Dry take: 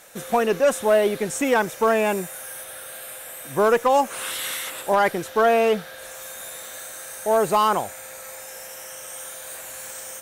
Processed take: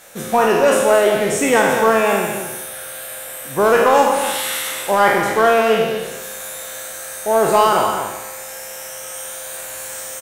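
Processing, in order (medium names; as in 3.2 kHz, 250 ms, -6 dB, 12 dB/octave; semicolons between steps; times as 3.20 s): spectral sustain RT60 1.03 s; loudspeakers at several distances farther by 17 m -10 dB, 74 m -8 dB; trim +2.5 dB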